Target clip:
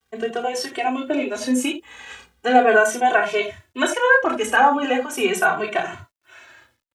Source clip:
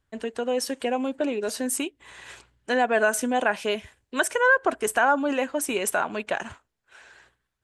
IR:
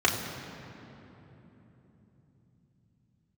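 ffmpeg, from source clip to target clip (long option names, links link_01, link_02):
-filter_complex "[1:a]atrim=start_sample=2205,atrim=end_sample=4410[link_01];[0:a][link_01]afir=irnorm=-1:irlink=0,acrusher=bits=9:mix=0:aa=0.000001,atempo=1.1,asplit=2[link_02][link_03];[link_03]adelay=2.1,afreqshift=-0.39[link_04];[link_02][link_04]amix=inputs=2:normalize=1,volume=-4.5dB"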